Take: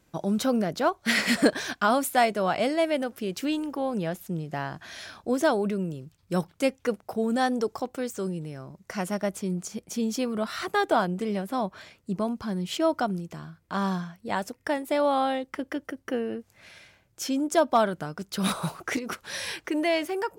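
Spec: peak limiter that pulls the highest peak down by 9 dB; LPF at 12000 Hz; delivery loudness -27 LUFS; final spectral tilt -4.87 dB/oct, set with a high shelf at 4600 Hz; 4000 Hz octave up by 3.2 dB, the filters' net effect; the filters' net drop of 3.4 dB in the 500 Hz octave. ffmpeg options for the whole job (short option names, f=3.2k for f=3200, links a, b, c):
-af "lowpass=12k,equalizer=f=500:t=o:g=-4.5,equalizer=f=4k:t=o:g=8.5,highshelf=f=4.6k:g=-9,volume=4dB,alimiter=limit=-14.5dB:level=0:latency=1"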